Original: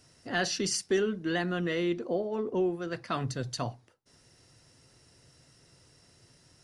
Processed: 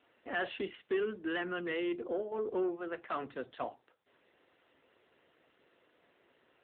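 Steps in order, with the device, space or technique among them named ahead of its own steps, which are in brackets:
high-pass filter 260 Hz 12 dB per octave
0:00.65–0:02.32: dynamic equaliser 650 Hz, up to −5 dB, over −46 dBFS, Q 2.3
telephone (band-pass filter 270–3,600 Hz; soft clipping −25.5 dBFS, distortion −17 dB; AMR narrowband 7.95 kbit/s 8,000 Hz)

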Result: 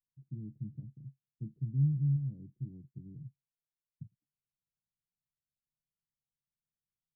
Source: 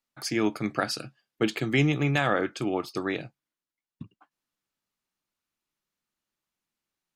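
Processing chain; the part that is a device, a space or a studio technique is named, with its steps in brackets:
the neighbour's flat through the wall (low-pass filter 160 Hz 24 dB per octave; parametric band 140 Hz +5.5 dB 0.69 octaves)
level −5 dB

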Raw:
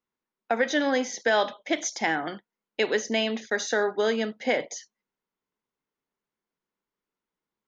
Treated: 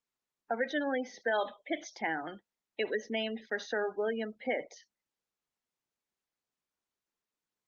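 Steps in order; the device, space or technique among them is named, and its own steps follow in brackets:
low-pass filter 5,100 Hz 24 dB per octave
0:03.18–0:04.42: noise gate −51 dBFS, range −46 dB
noise-suppressed video call (high-pass filter 100 Hz 6 dB per octave; gate on every frequency bin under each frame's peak −20 dB strong; level −7.5 dB; Opus 20 kbit/s 48,000 Hz)

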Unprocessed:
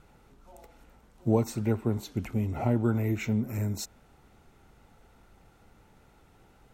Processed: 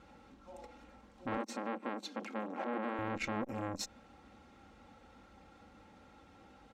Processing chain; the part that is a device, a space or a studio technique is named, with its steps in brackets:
valve radio (band-pass filter 80–5,500 Hz; tube saturation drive 28 dB, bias 0.5; saturating transformer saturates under 1,000 Hz)
0:01.37–0:02.99: elliptic high-pass filter 200 Hz
comb filter 3.7 ms, depth 64%
level +2.5 dB

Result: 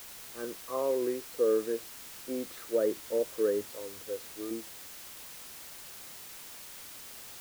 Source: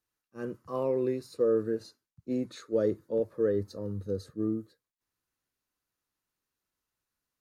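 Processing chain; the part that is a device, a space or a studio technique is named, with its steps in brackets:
0:03.73–0:04.51: parametric band 190 Hz −12.5 dB 1.4 octaves
wax cylinder (band-pass filter 360–2,400 Hz; tape wow and flutter; white noise bed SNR 12 dB)
level +1 dB

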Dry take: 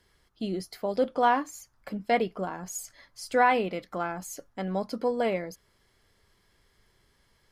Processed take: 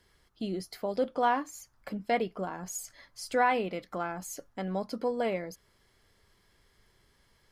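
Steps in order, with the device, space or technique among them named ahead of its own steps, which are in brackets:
parallel compression (in parallel at −3.5 dB: downward compressor, threshold −37 dBFS, peak gain reduction 18.5 dB)
on the sum: level −4.5 dB

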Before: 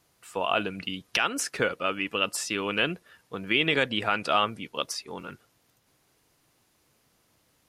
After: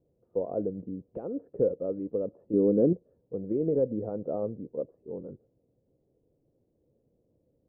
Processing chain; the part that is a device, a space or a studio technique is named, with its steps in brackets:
0:02.53–0:02.93: parametric band 250 Hz +10.5 dB 1.8 octaves
under water (low-pass filter 480 Hz 24 dB per octave; parametric band 520 Hz +9 dB 0.51 octaves)

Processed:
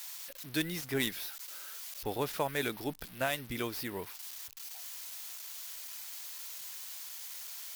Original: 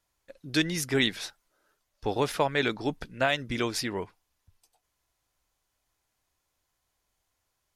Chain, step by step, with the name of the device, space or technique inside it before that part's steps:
budget class-D amplifier (gap after every zero crossing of 0.074 ms; spike at every zero crossing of −24 dBFS)
level −7 dB

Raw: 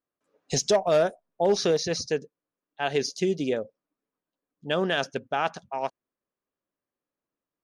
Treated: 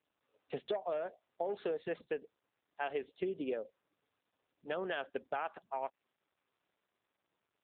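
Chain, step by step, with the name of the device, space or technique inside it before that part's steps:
voicemail (band-pass filter 330–2,900 Hz; downward compressor 10 to 1, threshold −27 dBFS, peak gain reduction 11 dB; level −5 dB; AMR narrowband 7.95 kbit/s 8,000 Hz)

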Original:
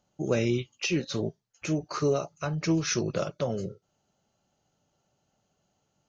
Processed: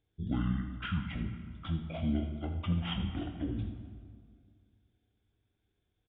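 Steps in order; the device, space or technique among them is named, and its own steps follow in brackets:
monster voice (pitch shifter −11 semitones; low-shelf EQ 120 Hz +8 dB; single-tap delay 81 ms −13 dB; convolution reverb RT60 2.1 s, pre-delay 9 ms, DRR 5.5 dB)
level −9 dB

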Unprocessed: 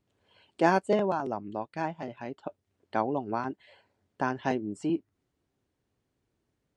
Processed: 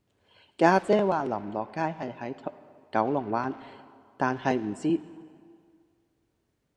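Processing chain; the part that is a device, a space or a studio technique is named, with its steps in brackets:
saturated reverb return (on a send at −12.5 dB: convolution reverb RT60 1.9 s, pre-delay 48 ms + soft clipping −31 dBFS, distortion −8 dB)
on the sum: level +3 dB

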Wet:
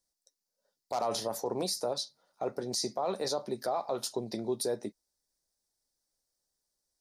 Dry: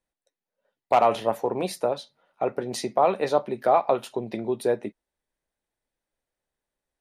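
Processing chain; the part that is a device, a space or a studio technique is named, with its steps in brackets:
over-bright horn tweeter (high shelf with overshoot 3,700 Hz +11 dB, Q 3; brickwall limiter −17.5 dBFS, peak gain reduction 10.5 dB)
level −5 dB

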